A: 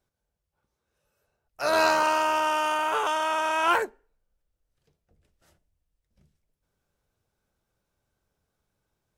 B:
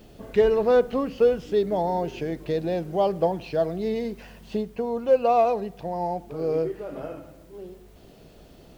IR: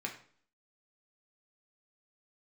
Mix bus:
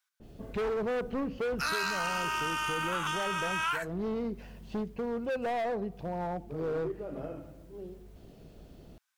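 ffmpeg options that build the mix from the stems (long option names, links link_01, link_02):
-filter_complex "[0:a]highpass=frequency=1200:width=0.5412,highpass=frequency=1200:width=1.3066,volume=3dB[link_01];[1:a]lowshelf=frequency=380:gain=8.5,asoftclip=type=hard:threshold=-20.5dB,adynamicequalizer=threshold=0.00794:dfrequency=2600:dqfactor=0.7:tfrequency=2600:tqfactor=0.7:attack=5:release=100:ratio=0.375:range=3:mode=cutabove:tftype=highshelf,adelay=200,volume=-8dB[link_02];[link_01][link_02]amix=inputs=2:normalize=0,acompressor=threshold=-28dB:ratio=10"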